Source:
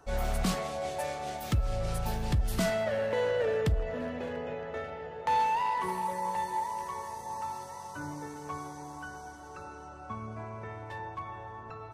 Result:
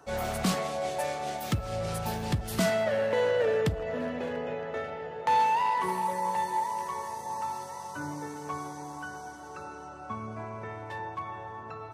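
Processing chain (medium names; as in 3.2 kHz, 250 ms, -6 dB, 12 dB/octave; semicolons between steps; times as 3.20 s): high-pass 110 Hz 12 dB/octave; trim +3 dB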